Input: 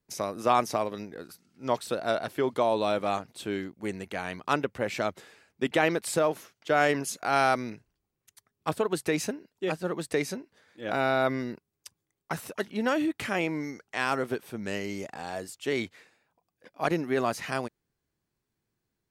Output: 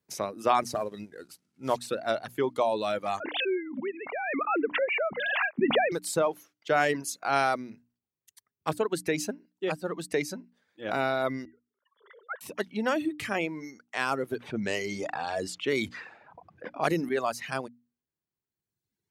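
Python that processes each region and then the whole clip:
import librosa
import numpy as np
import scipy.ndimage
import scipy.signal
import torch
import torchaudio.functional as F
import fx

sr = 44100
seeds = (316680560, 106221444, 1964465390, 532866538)

y = fx.chain(x, sr, fx.cvsd(bps=64000),
    fx.low_shelf(hz=170.0, db=5.0), at=(0.62, 1.91))
y = fx.chain(y, sr, fx.sine_speech(),
    fx.pre_swell(db_per_s=21.0), at=(3.2, 5.92))
y = fx.chain(y, sr, fx.sine_speech(),
    fx.fixed_phaser(hz=510.0, stages=8),
    fx.pre_swell(db_per_s=90.0), at=(11.45, 12.41))
y = fx.chain(y, sr, fx.env_lowpass(base_hz=1800.0, full_db=-25.5),
    fx.high_shelf(hz=8500.0, db=8.0),
    fx.env_flatten(amount_pct=50), at=(14.4, 17.09))
y = scipy.signal.sosfilt(scipy.signal.butter(2, 74.0, 'highpass', fs=sr, output='sos'), y)
y = fx.dereverb_blind(y, sr, rt60_s=1.4)
y = fx.hum_notches(y, sr, base_hz=60, count=5)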